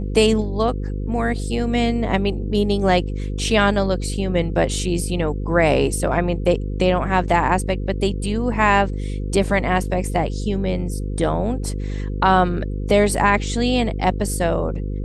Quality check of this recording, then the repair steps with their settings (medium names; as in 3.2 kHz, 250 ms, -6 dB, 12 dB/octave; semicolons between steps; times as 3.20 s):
buzz 50 Hz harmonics 10 -25 dBFS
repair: de-hum 50 Hz, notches 10